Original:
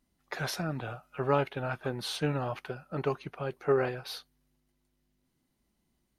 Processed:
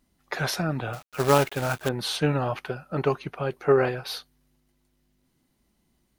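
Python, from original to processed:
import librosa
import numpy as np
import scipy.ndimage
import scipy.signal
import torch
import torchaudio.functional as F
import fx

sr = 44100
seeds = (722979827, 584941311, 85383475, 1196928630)

y = fx.quant_companded(x, sr, bits=4, at=(0.93, 1.89))
y = F.gain(torch.from_numpy(y), 6.5).numpy()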